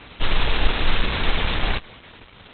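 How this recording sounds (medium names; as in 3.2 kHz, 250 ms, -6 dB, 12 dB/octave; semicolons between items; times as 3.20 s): aliases and images of a low sample rate 9.3 kHz, jitter 0%; Opus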